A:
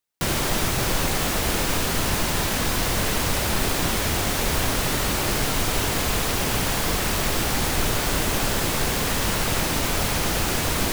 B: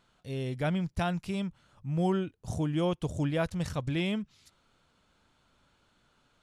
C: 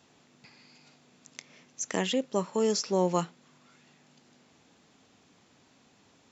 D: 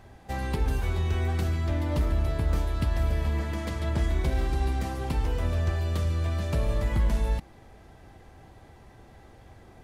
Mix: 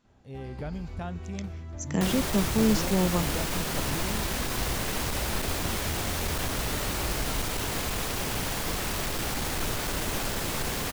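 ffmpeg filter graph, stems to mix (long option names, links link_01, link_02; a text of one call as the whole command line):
ffmpeg -i stem1.wav -i stem2.wav -i stem3.wav -i stem4.wav -filter_complex "[0:a]aeval=exprs='clip(val(0),-1,0.1)':channel_layout=same,adelay=1800,volume=-6.5dB[link_01];[1:a]volume=-4.5dB[link_02];[2:a]equalizer=frequency=210:width=1.9:gain=14.5,dynaudnorm=framelen=430:gausssize=3:maxgain=14dB,volume=-13.5dB[link_03];[3:a]adelay=50,volume=-12dB[link_04];[link_02][link_04]amix=inputs=2:normalize=0,highshelf=frequency=2700:gain=-11.5,alimiter=level_in=1.5dB:limit=-24dB:level=0:latency=1:release=313,volume=-1.5dB,volume=0dB[link_05];[link_01][link_03][link_05]amix=inputs=3:normalize=0" out.wav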